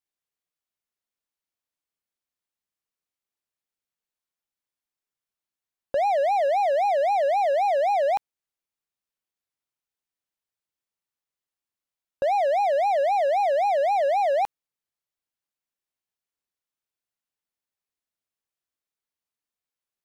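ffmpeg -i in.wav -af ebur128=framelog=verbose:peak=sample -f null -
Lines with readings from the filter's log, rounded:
Integrated loudness:
  I:         -22.6 LUFS
  Threshold: -32.6 LUFS
Loudness range:
  LRA:         9.4 LU
  Threshold: -45.6 LUFS
  LRA low:   -32.6 LUFS
  LRA high:  -23.3 LUFS
Sample peak:
  Peak:      -16.9 dBFS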